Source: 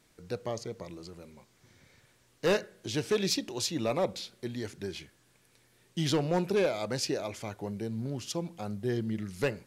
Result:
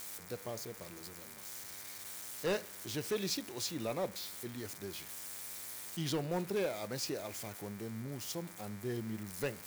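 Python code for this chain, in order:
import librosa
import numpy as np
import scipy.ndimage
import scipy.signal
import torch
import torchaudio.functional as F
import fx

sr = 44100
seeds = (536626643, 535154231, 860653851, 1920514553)

y = x + 0.5 * 10.0 ** (-31.0 / 20.0) * np.diff(np.sign(x), prepend=np.sign(x[:1]))
y = fx.dmg_buzz(y, sr, base_hz=100.0, harmonics=24, level_db=-51.0, tilt_db=0, odd_only=False)
y = y * librosa.db_to_amplitude(-7.5)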